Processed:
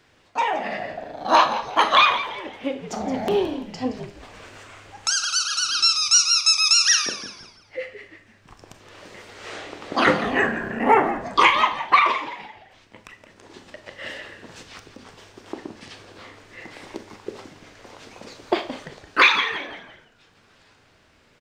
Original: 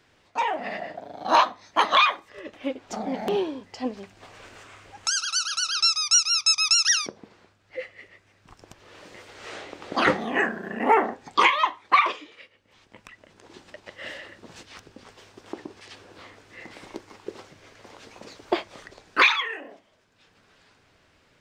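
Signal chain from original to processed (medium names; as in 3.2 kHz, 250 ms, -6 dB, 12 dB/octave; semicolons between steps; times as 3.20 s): 5.58–6.10 s: resonant low shelf 390 Hz +7 dB, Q 3; frequency-shifting echo 170 ms, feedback 38%, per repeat -98 Hz, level -12 dB; Schroeder reverb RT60 0.37 s, combs from 27 ms, DRR 9 dB; trim +2.5 dB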